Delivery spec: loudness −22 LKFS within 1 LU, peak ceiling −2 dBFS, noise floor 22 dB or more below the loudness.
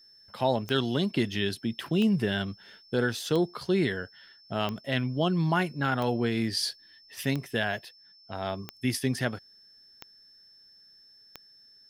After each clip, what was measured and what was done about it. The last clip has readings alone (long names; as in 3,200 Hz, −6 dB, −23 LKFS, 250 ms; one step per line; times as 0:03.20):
number of clicks 9; interfering tone 5,300 Hz; level of the tone −54 dBFS; integrated loudness −29.0 LKFS; sample peak −12.5 dBFS; target loudness −22.0 LKFS
→ click removal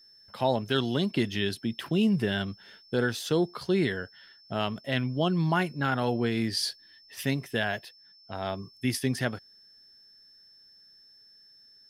number of clicks 0; interfering tone 5,300 Hz; level of the tone −54 dBFS
→ notch filter 5,300 Hz, Q 30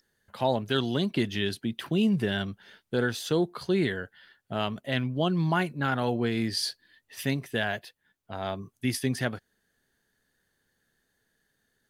interfering tone none found; integrated loudness −29.0 LKFS; sample peak −12.5 dBFS; target loudness −22.0 LKFS
→ level +7 dB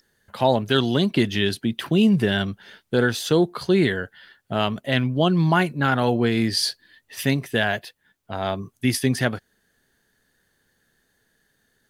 integrated loudness −22.0 LKFS; sample peak −5.5 dBFS; background noise floor −69 dBFS